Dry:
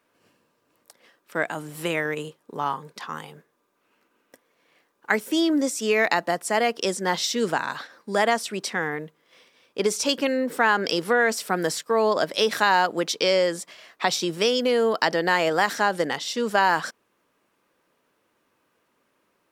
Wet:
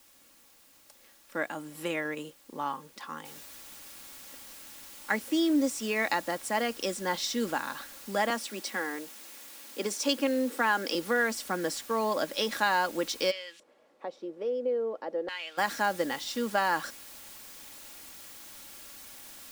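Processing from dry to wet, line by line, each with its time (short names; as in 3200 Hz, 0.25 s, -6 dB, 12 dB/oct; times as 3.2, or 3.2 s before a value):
3.25 noise floor step -53 dB -41 dB
8.3–10.95 steep high-pass 200 Hz
13.3–15.57 LFO band-pass square 0.11 Hz -> 0.68 Hz 480–2900 Hz
whole clip: bell 260 Hz +2 dB; comb 3.6 ms, depth 43%; gain -7.5 dB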